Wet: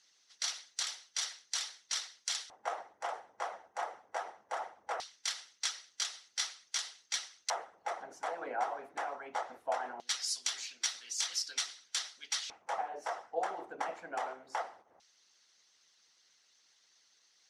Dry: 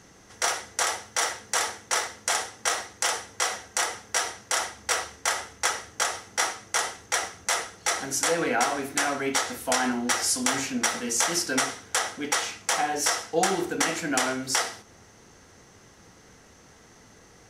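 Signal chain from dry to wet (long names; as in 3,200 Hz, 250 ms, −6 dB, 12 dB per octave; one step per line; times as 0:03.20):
auto-filter band-pass square 0.2 Hz 750–4,200 Hz
harmonic and percussive parts rebalanced harmonic −15 dB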